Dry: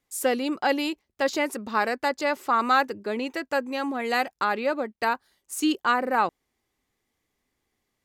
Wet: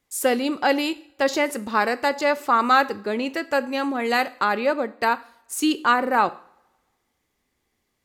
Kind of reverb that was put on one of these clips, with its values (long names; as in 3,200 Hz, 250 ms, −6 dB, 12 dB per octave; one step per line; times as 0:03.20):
coupled-rooms reverb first 0.49 s, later 1.5 s, from −22 dB, DRR 13.5 dB
level +3.5 dB